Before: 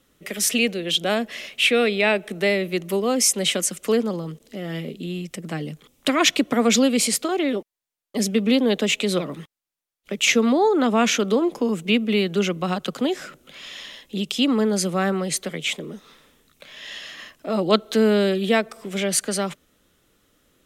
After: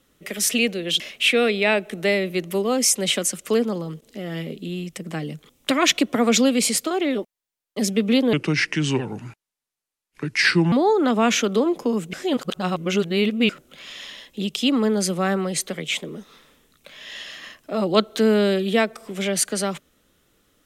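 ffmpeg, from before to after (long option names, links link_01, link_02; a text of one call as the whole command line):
ffmpeg -i in.wav -filter_complex "[0:a]asplit=6[link_01][link_02][link_03][link_04][link_05][link_06];[link_01]atrim=end=1.002[link_07];[link_02]atrim=start=1.378:end=8.714[link_08];[link_03]atrim=start=8.71:end=10.48,asetpts=PTS-STARTPTS,asetrate=32634,aresample=44100,atrim=end_sample=105482,asetpts=PTS-STARTPTS[link_09];[link_04]atrim=start=10.476:end=11.892[link_10];[link_05]atrim=start=11.888:end=13.252,asetpts=PTS-STARTPTS,areverse[link_11];[link_06]atrim=start=13.248[link_12];[link_07][link_08]acrossfade=duration=0.004:curve1=hsin:curve2=hsin[link_13];[link_13][link_09]acrossfade=duration=0.004:curve1=hsin:curve2=hsin[link_14];[link_14][link_10]acrossfade=duration=0.004:curve1=hsin:curve2=hsin[link_15];[link_15][link_11]acrossfade=duration=0.004:curve1=hsin:curve2=hsin[link_16];[link_16][link_12]acrossfade=duration=0.004:curve1=hsin:curve2=hsin" out.wav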